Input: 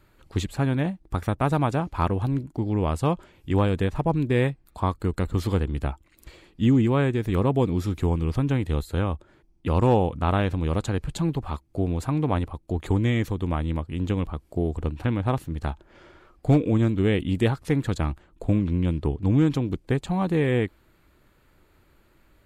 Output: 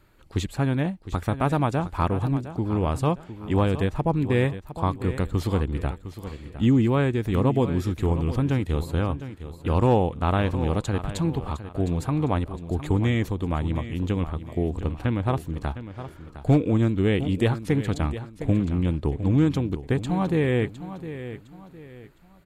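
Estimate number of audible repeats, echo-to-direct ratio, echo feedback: 3, -12.0 dB, 34%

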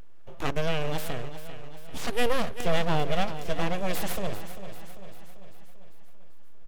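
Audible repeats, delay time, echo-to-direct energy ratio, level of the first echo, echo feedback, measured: 5, 394 ms, -10.5 dB, -12.0 dB, 56%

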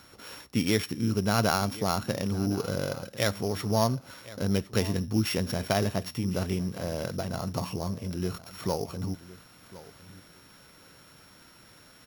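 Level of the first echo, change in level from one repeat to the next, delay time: -18.0 dB, -16.5 dB, 1059 ms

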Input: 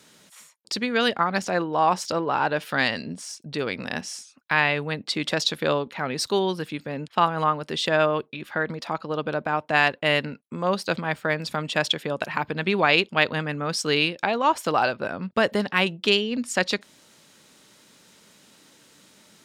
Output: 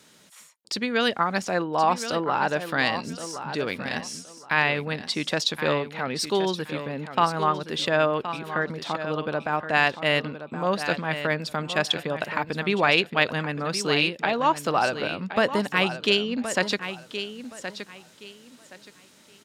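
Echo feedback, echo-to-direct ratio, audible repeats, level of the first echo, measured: 23%, -10.5 dB, 2, -10.5 dB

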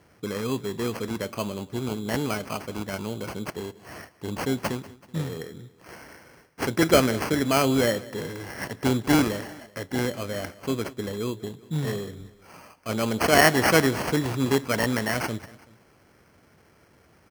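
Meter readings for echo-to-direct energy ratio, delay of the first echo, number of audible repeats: -19.0 dB, 190 ms, 2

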